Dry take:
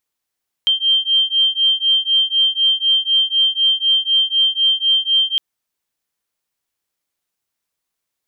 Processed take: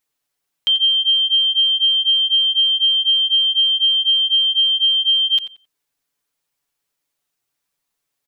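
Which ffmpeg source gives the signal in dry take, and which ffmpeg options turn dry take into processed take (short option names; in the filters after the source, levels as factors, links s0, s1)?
-f lavfi -i "aevalsrc='0.158*(sin(2*PI*3150*t)+sin(2*PI*3154*t))':d=4.71:s=44100"
-filter_complex "[0:a]aecho=1:1:7:0.75,alimiter=limit=0.266:level=0:latency=1:release=28,asplit=2[s0][s1];[s1]adelay=89,lowpass=f=2800:p=1,volume=0.316,asplit=2[s2][s3];[s3]adelay=89,lowpass=f=2800:p=1,volume=0.27,asplit=2[s4][s5];[s5]adelay=89,lowpass=f=2800:p=1,volume=0.27[s6];[s0][s2][s4][s6]amix=inputs=4:normalize=0"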